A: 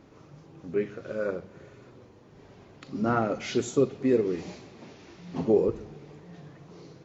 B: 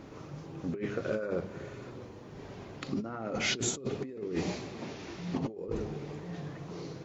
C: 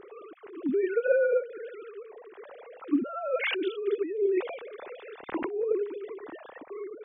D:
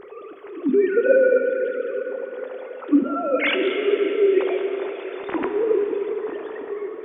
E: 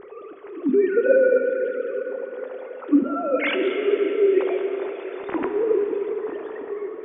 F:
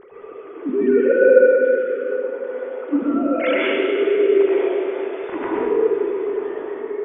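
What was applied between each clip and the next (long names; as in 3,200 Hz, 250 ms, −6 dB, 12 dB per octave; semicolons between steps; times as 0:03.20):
compressor whose output falls as the input rises −35 dBFS, ratio −1
three sine waves on the formant tracks; level +6 dB
dense smooth reverb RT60 4.7 s, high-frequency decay 0.85×, DRR 3.5 dB; level +7 dB
high-frequency loss of the air 250 metres
dense smooth reverb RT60 1.2 s, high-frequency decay 0.85×, pre-delay 105 ms, DRR −5.5 dB; level −3 dB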